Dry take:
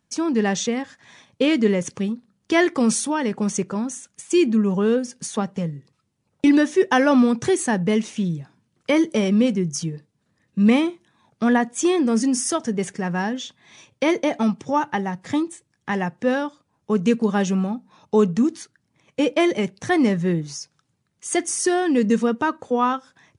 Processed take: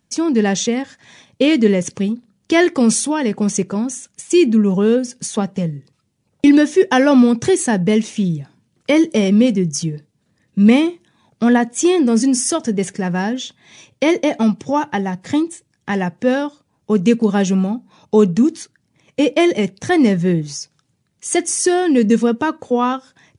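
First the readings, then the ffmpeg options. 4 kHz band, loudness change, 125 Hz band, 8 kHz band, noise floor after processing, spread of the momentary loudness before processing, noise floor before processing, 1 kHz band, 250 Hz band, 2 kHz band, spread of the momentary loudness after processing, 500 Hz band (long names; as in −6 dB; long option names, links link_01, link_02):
+5.0 dB, +5.0 dB, +5.5 dB, +5.5 dB, −67 dBFS, 12 LU, −72 dBFS, +2.5 dB, +5.5 dB, +3.0 dB, 13 LU, +5.0 dB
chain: -af "equalizer=frequency=1200:width_type=o:width=1.2:gain=-5,volume=5.5dB"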